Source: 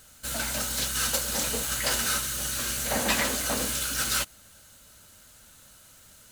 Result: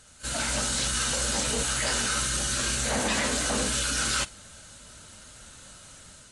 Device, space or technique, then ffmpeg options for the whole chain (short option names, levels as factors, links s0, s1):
low-bitrate web radio: -af "dynaudnorm=f=180:g=5:m=1.88,alimiter=limit=0.126:level=0:latency=1:release=34" -ar 22050 -c:a aac -b:a 32k